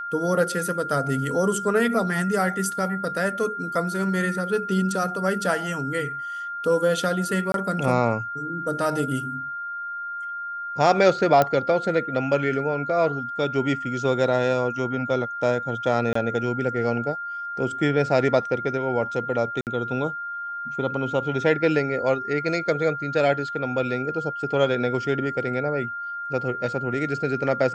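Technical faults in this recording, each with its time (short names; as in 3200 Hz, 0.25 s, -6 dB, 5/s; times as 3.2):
tone 1400 Hz -29 dBFS
7.52–7.54 gap 22 ms
11.42 pop -7 dBFS
16.13–16.15 gap 24 ms
19.61–19.67 gap 58 ms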